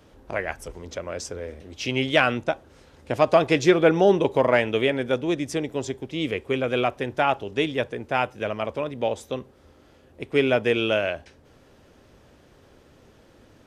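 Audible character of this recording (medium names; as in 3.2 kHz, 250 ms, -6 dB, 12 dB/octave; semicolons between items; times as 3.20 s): noise floor -55 dBFS; spectral tilt -3.5 dB/octave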